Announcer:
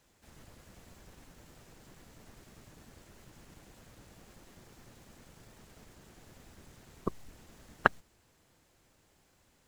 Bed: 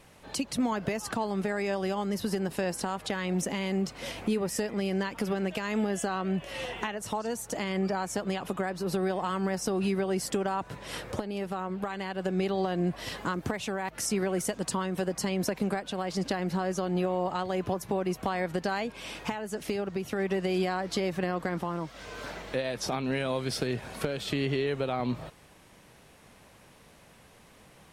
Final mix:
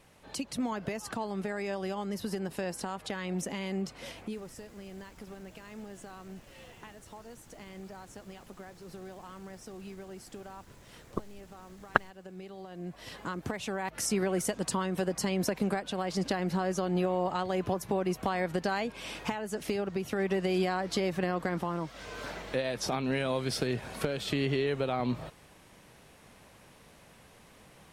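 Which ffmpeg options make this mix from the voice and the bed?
-filter_complex "[0:a]adelay=4100,volume=0.944[s0];[1:a]volume=3.76,afade=t=out:st=3.96:d=0.54:silence=0.251189,afade=t=in:st=12.68:d=1.29:silence=0.158489[s1];[s0][s1]amix=inputs=2:normalize=0"

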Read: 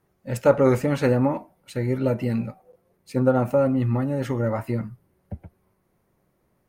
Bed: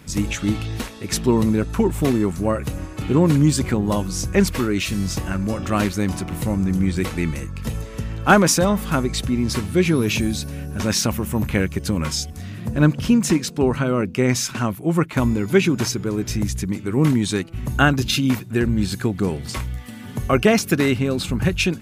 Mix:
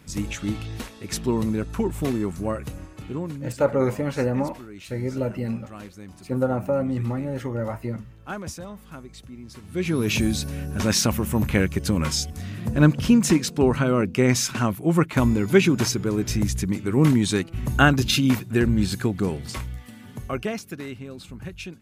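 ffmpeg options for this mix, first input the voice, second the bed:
-filter_complex "[0:a]adelay=3150,volume=0.668[s0];[1:a]volume=4.73,afade=t=out:st=2.51:d=0.91:silence=0.199526,afade=t=in:st=9.61:d=0.62:silence=0.105925,afade=t=out:st=18.7:d=1.97:silence=0.158489[s1];[s0][s1]amix=inputs=2:normalize=0"

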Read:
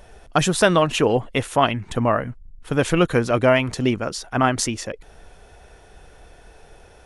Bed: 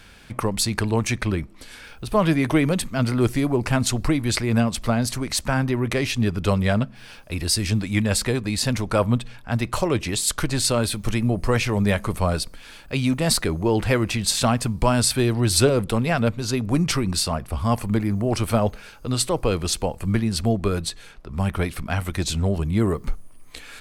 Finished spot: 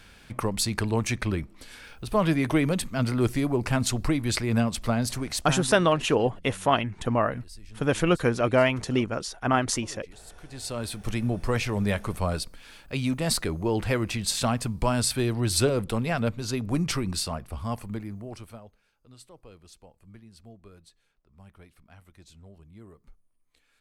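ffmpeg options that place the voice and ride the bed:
-filter_complex "[0:a]adelay=5100,volume=0.596[s0];[1:a]volume=7.5,afade=t=out:st=5.2:d=0.65:silence=0.0707946,afade=t=in:st=10.41:d=0.78:silence=0.0841395,afade=t=out:st=17.01:d=1.62:silence=0.0749894[s1];[s0][s1]amix=inputs=2:normalize=0"

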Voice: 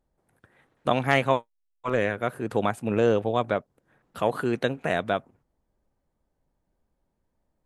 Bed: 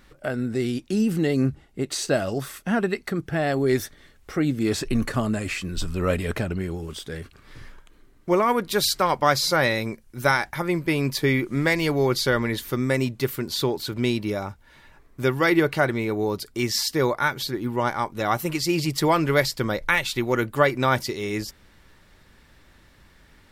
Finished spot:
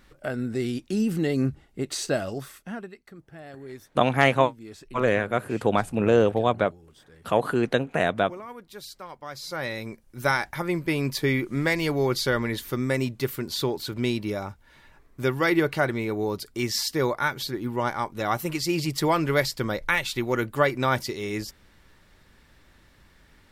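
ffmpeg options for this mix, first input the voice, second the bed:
-filter_complex "[0:a]adelay=3100,volume=1.33[s0];[1:a]volume=5.31,afade=t=out:st=2.05:d=0.88:silence=0.141254,afade=t=in:st=9.29:d=1.08:silence=0.141254[s1];[s0][s1]amix=inputs=2:normalize=0"

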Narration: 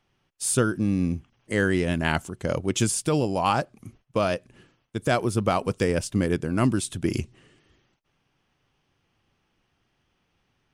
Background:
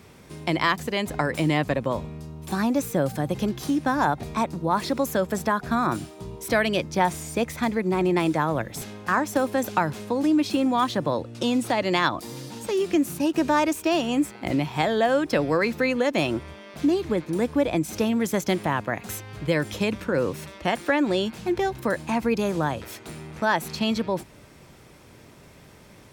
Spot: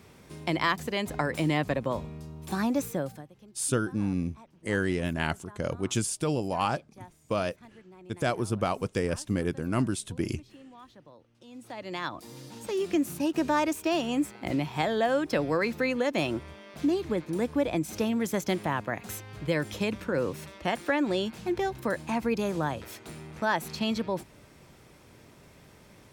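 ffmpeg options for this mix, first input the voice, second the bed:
-filter_complex "[0:a]adelay=3150,volume=0.562[s0];[1:a]volume=9.44,afade=t=out:st=2.82:d=0.46:silence=0.0630957,afade=t=in:st=11.47:d=1.45:silence=0.0668344[s1];[s0][s1]amix=inputs=2:normalize=0"

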